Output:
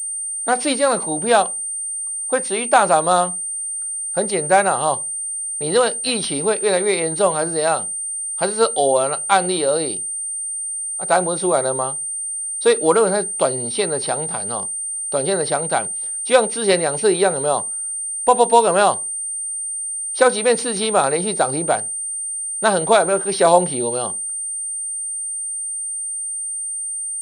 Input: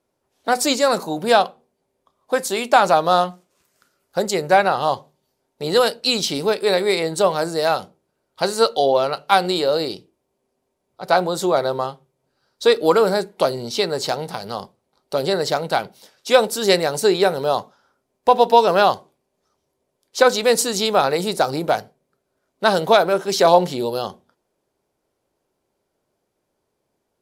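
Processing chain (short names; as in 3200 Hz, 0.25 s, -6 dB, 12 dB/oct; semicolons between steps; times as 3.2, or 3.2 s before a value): pulse-width modulation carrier 8800 Hz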